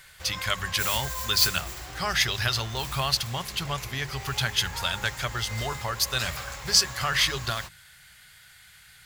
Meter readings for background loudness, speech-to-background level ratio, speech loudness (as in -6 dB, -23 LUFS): -35.0 LUFS, 8.5 dB, -26.5 LUFS